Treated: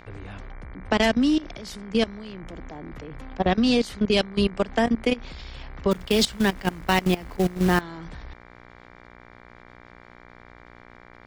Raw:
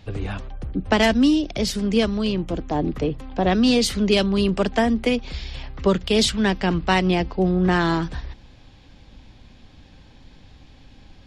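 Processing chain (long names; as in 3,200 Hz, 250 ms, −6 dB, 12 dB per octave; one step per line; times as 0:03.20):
output level in coarse steps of 19 dB
0:05.91–0:07.81: floating-point word with a short mantissa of 2 bits
hum with harmonics 60 Hz, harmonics 39, −49 dBFS −1 dB per octave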